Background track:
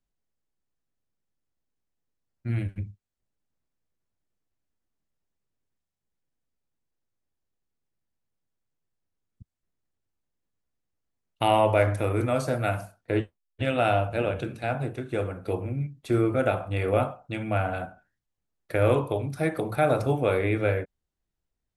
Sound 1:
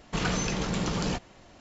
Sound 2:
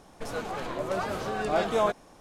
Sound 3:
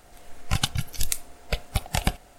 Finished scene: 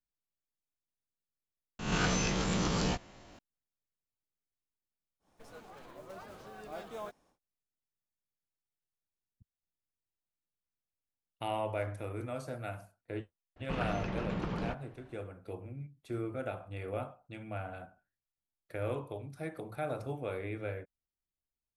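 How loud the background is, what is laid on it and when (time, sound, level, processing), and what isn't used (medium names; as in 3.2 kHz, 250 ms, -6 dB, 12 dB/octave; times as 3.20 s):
background track -14 dB
1.79 s: replace with 1 -4 dB + reverse spectral sustain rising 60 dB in 0.66 s
5.19 s: add 2 -18 dB, fades 0.10 s + block-companded coder 5-bit
13.56 s: add 1 -6.5 dB + low-pass 2.2 kHz
not used: 3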